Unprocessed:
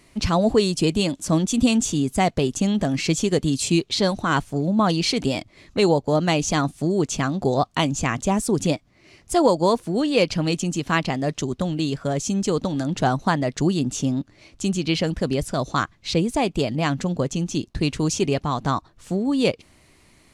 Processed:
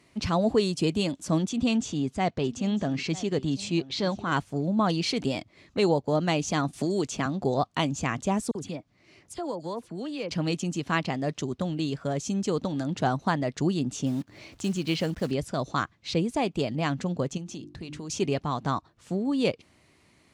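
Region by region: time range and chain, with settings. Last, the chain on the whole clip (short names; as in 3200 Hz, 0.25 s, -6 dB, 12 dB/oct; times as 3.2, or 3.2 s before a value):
1.49–4.32 LPF 6000 Hz + transient shaper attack -5 dB, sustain 0 dB + echo 0.949 s -18.5 dB
6.73–7.26 bell 160 Hz -6 dB 0.35 oct + three-band squash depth 70%
8.51–10.31 compressor 2:1, threshold -32 dBFS + dispersion lows, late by 42 ms, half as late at 2400 Hz
14.06–15.32 block floating point 5-bit + upward compressor, threshold -30 dBFS
17.37–18.1 notches 50/100/150/200/250/300/350 Hz + compressor, threshold -29 dBFS
whole clip: HPF 76 Hz; high shelf 9300 Hz -10 dB; gain -5 dB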